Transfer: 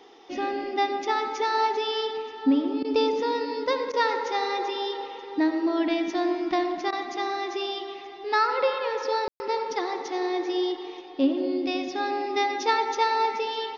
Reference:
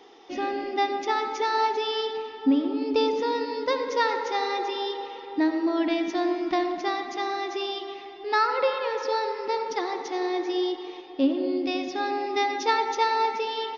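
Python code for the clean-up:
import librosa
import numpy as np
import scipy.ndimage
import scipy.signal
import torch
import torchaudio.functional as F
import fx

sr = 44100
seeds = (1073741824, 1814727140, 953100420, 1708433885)

y = fx.fix_ambience(x, sr, seeds[0], print_start_s=0.0, print_end_s=0.5, start_s=9.28, end_s=9.4)
y = fx.fix_interpolate(y, sr, at_s=(2.83, 3.92, 6.91), length_ms=14.0)
y = fx.fix_echo_inverse(y, sr, delay_ms=927, level_db=-22.5)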